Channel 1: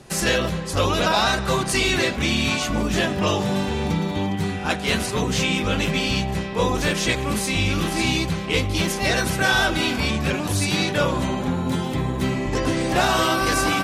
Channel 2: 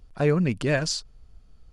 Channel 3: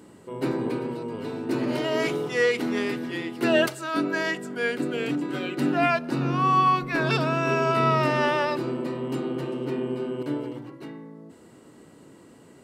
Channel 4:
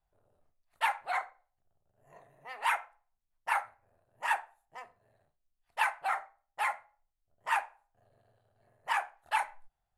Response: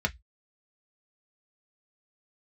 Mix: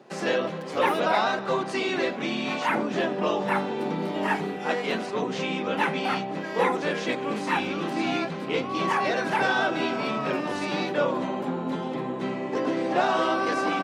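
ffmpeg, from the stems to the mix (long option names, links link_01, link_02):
-filter_complex "[0:a]lowpass=5200,equalizer=frequency=580:width=0.36:gain=10.5,volume=-12dB[link_01];[1:a]aeval=exprs='abs(val(0))':channel_layout=same,volume=-15dB[link_02];[2:a]adelay=2300,volume=-10dB,asplit=3[link_03][link_04][link_05];[link_03]atrim=end=5.01,asetpts=PTS-STARTPTS,afade=type=out:start_time=5.006:duration=0.004:curve=hsin[link_06];[link_04]atrim=start=5.01:end=6.31,asetpts=PTS-STARTPTS,volume=0[link_07];[link_05]atrim=start=6.31,asetpts=PTS-STARTPTS,afade=type=in:duration=0.004:curve=hsin[link_08];[link_06][link_07][link_08]concat=n=3:v=0:a=1[link_09];[3:a]acrossover=split=3900[link_10][link_11];[link_11]acompressor=threshold=-54dB:ratio=4:attack=1:release=60[link_12];[link_10][link_12]amix=inputs=2:normalize=0,volume=3dB[link_13];[link_01][link_02][link_09][link_13]amix=inputs=4:normalize=0,highpass=frequency=170:width=0.5412,highpass=frequency=170:width=1.3066"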